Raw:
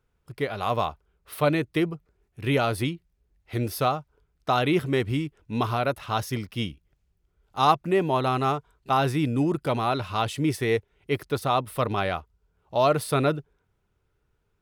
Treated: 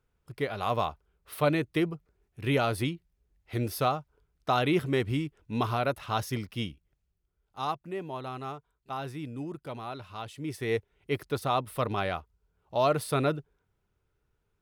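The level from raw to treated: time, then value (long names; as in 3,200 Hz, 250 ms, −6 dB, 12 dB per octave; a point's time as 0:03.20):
0:06.46 −3 dB
0:07.85 −13.5 dB
0:10.37 −13.5 dB
0:10.77 −4 dB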